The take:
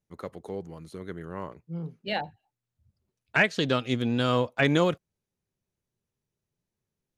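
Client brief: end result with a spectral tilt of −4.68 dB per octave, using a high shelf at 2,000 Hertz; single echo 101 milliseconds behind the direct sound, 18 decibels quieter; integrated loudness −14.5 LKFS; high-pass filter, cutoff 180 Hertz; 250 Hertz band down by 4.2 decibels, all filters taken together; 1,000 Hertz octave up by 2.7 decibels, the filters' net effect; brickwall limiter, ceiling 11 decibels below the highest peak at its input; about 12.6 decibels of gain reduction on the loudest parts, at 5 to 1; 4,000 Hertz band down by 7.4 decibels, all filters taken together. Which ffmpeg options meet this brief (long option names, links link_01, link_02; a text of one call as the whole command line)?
ffmpeg -i in.wav -af "highpass=180,equalizer=frequency=250:width_type=o:gain=-4,equalizer=frequency=1000:width_type=o:gain=5,highshelf=frequency=2000:gain=-3.5,equalizer=frequency=4000:width_type=o:gain=-7,acompressor=threshold=-33dB:ratio=5,alimiter=level_in=3.5dB:limit=-24dB:level=0:latency=1,volume=-3.5dB,aecho=1:1:101:0.126,volume=26.5dB" out.wav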